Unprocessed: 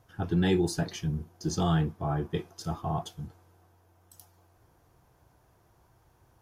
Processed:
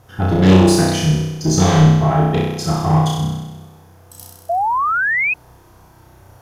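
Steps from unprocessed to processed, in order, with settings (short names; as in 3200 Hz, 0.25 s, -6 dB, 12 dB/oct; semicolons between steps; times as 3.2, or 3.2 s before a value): sine folder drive 6 dB, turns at -15.5 dBFS; flutter echo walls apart 5.5 m, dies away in 1.1 s; painted sound rise, 4.49–5.34, 660–2600 Hz -20 dBFS; gain +3 dB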